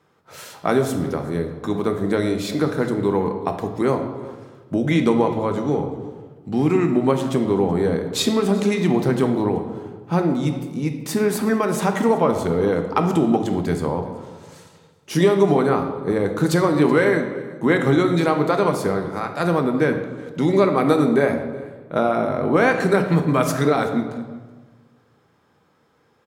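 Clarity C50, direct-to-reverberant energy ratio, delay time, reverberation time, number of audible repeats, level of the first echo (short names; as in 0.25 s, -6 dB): 7.5 dB, 4.5 dB, 0.377 s, 1.4 s, 1, -22.0 dB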